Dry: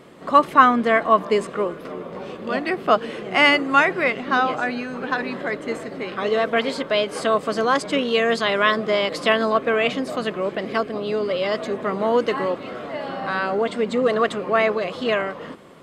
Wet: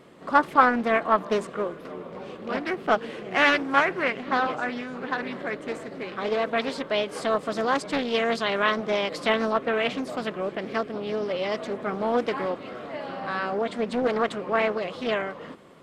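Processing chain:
highs frequency-modulated by the lows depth 0.49 ms
level −5 dB

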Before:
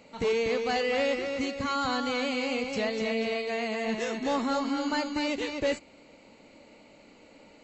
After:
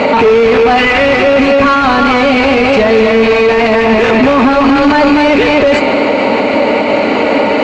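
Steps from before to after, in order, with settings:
loose part that buzzes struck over −46 dBFS, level −24 dBFS
0:00.77–0:01.20: parametric band 2,400 Hz +15 dB → +4 dB 2.1 octaves
mid-hump overdrive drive 34 dB, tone 1,100 Hz, clips at −11 dBFS
high-frequency loss of the air 130 metres
notch comb filter 170 Hz
boost into a limiter +27.5 dB
level −1 dB

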